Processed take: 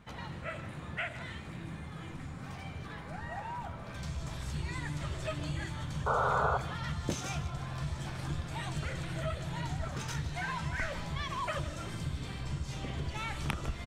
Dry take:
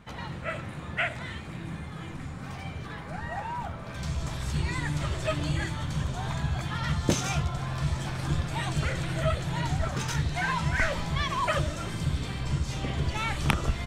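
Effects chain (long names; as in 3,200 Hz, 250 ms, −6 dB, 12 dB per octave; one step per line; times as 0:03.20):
downward compressor 1.5 to 1, threshold −34 dBFS, peak gain reduction 6 dB
sound drawn into the spectrogram noise, 0:06.06–0:06.58, 400–1,500 Hz −25 dBFS
single-tap delay 154 ms −15 dB
level −4.5 dB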